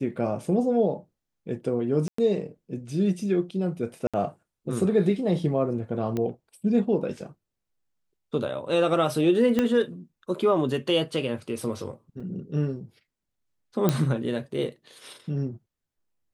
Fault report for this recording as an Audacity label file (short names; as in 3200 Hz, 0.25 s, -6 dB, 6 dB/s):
2.080000	2.180000	gap 0.104 s
4.070000	4.140000	gap 66 ms
6.170000	6.170000	pop -17 dBFS
9.590000	9.590000	pop -11 dBFS
12.200000	12.200000	gap 4.8 ms
13.890000	13.890000	pop -8 dBFS